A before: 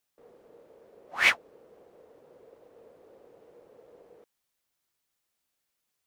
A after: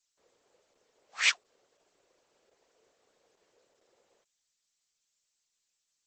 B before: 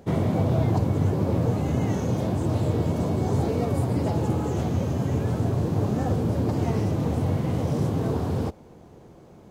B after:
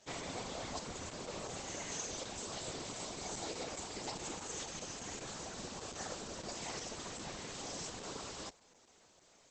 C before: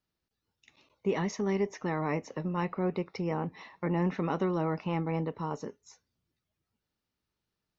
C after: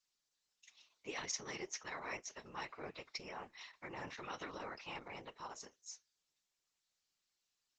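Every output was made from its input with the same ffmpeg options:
ffmpeg -i in.wav -af "aderivative,afftfilt=real='hypot(re,im)*cos(2*PI*random(0))':imag='hypot(re,im)*sin(2*PI*random(1))':win_size=512:overlap=0.75,volume=12.5dB" -ar 48000 -c:a libopus -b:a 10k out.opus

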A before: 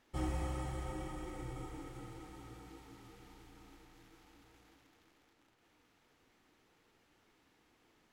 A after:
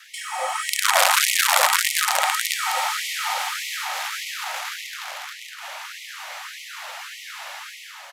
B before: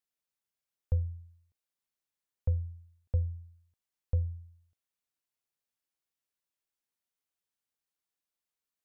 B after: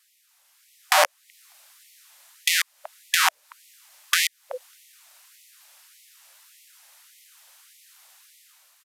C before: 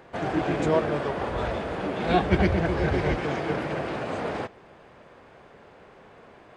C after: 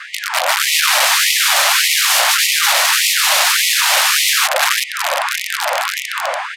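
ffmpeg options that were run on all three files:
ffmpeg -i in.wav -filter_complex "[0:a]adynamicequalizer=threshold=0.01:dfrequency=440:dqfactor=1.5:tfrequency=440:tqfactor=1.5:attack=5:release=100:ratio=0.375:range=3:mode=boostabove:tftype=bell,asplit=2[link_01][link_02];[link_02]adelay=380,highpass=300,lowpass=3400,asoftclip=type=hard:threshold=-16dB,volume=-13dB[link_03];[link_01][link_03]amix=inputs=2:normalize=0,acrossover=split=240|750[link_04][link_05][link_06];[link_05]asoftclip=type=tanh:threshold=-27.5dB[link_07];[link_04][link_07][link_06]amix=inputs=3:normalize=0,acompressor=threshold=-48dB:ratio=2.5,aeval=exprs='val(0)+0.000224*(sin(2*PI*60*n/s)+sin(2*PI*2*60*n/s)/2+sin(2*PI*3*60*n/s)/3+sin(2*PI*4*60*n/s)/4+sin(2*PI*5*60*n/s)/5)':channel_layout=same,dynaudnorm=framelen=140:gausssize=11:maxgain=10dB,aeval=exprs='(mod(50.1*val(0)+1,2)-1)/50.1':channel_layout=same,aresample=32000,aresample=44100,alimiter=level_in=33dB:limit=-1dB:release=50:level=0:latency=1,afftfilt=real='re*gte(b*sr/1024,510*pow(1900/510,0.5+0.5*sin(2*PI*1.7*pts/sr)))':imag='im*gte(b*sr/1024,510*pow(1900/510,0.5+0.5*sin(2*PI*1.7*pts/sr)))':win_size=1024:overlap=0.75,volume=-4.5dB" out.wav

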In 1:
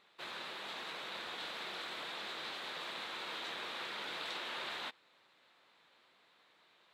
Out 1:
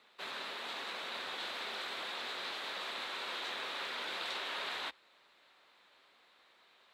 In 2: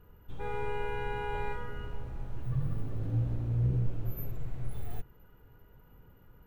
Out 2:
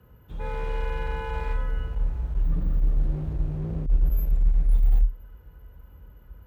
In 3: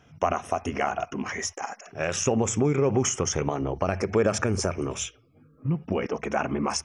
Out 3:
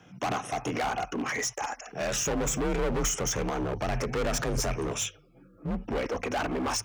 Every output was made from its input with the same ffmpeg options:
ffmpeg -i in.wav -af "volume=28.5dB,asoftclip=hard,volume=-28.5dB,afreqshift=36,asubboost=boost=5.5:cutoff=61,volume=2.5dB" out.wav

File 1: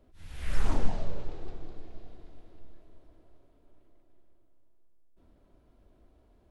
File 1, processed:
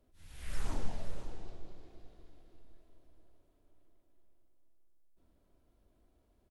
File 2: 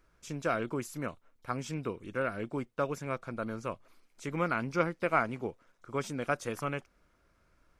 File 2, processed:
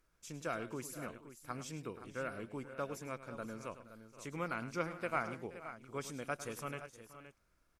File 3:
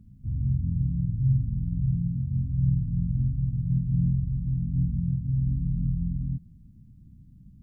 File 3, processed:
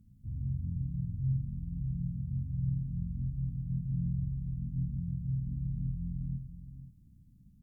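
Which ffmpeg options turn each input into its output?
ffmpeg -i in.wav -af "aemphasis=mode=production:type=cd,aecho=1:1:104|475|520:0.224|0.126|0.237,volume=-8.5dB" out.wav

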